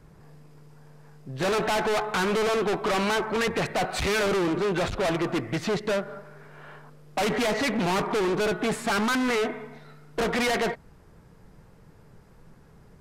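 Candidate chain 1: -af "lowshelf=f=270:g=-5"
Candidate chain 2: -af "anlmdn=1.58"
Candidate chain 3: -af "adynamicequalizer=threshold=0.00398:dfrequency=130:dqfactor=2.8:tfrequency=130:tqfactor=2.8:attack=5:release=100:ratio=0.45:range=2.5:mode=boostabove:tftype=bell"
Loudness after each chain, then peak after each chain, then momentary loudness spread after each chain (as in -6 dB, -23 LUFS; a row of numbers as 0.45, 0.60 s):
-27.0, -26.0, -26.0 LUFS; -20.0, -22.5, -19.5 dBFS; 6, 6, 6 LU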